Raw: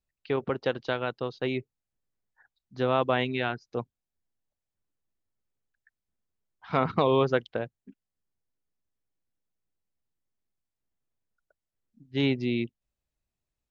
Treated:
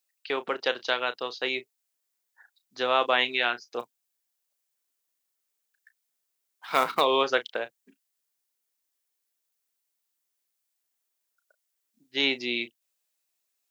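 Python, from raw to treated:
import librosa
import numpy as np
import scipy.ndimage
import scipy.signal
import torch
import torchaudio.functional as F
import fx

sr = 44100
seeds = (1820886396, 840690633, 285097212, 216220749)

y = scipy.signal.sosfilt(scipy.signal.butter(2, 310.0, 'highpass', fs=sr, output='sos'), x)
y = fx.tilt_eq(y, sr, slope=3.5)
y = fx.quant_float(y, sr, bits=2, at=(3.79, 7.0), fade=0.02)
y = fx.doubler(y, sr, ms=33.0, db=-13)
y = F.gain(torch.from_numpy(y), 3.0).numpy()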